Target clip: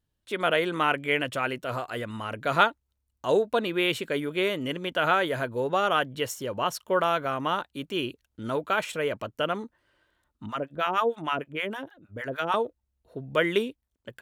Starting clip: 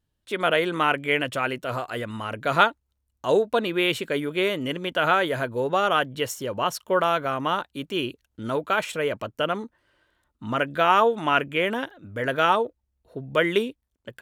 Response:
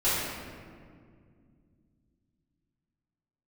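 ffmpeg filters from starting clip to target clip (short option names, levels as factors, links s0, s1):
-filter_complex "[0:a]asettb=1/sr,asplit=3[s0][s1][s2];[s0]atrim=end=10.464[s3];[s1]atrim=start=10.46:end=12.54,asetpts=PTS-STARTPTS,afade=t=in:d=0.004:c=qsin,afade=t=out:st=2.076:d=0.004:c=qsin,acrossover=split=750[s4][s5];[s4]aeval=exprs='val(0)*(1-1/2+1/2*cos(2*PI*6.5*n/s))':c=same[s6];[s5]aeval=exprs='val(0)*(1-1/2-1/2*cos(2*PI*6.5*n/s))':c=same[s7];[s6][s7]amix=inputs=2:normalize=0[s8];[s2]atrim=start=12.536[s9];[s3][s8]acrossfade=d=0.004:c1=hsin:c2=qsin[s10];[s10][s9]acrossfade=d=0.004:c1=qsin:c2=hsin,volume=0.75"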